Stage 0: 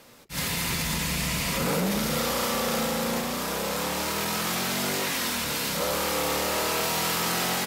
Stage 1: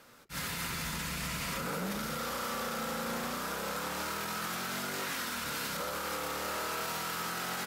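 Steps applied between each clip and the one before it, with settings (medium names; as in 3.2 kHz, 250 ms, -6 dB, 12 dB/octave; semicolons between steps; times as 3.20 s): peaking EQ 1.4 kHz +9 dB 0.52 oct; peak limiter -20 dBFS, peak gain reduction 7 dB; trim -7 dB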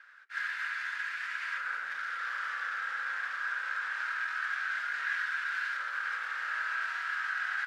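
ladder band-pass 1.7 kHz, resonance 80%; trim +9 dB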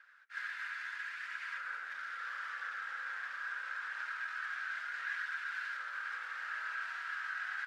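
flange 0.75 Hz, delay 0 ms, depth 3.4 ms, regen -69%; trim -2 dB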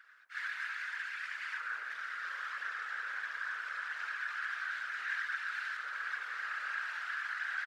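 three bands offset in time highs, mids, lows 40/70 ms, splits 200/990 Hz; whisper effect; trim +3 dB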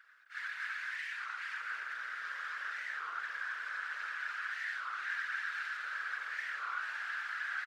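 delay 260 ms -4 dB; warped record 33 1/3 rpm, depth 250 cents; trim -2 dB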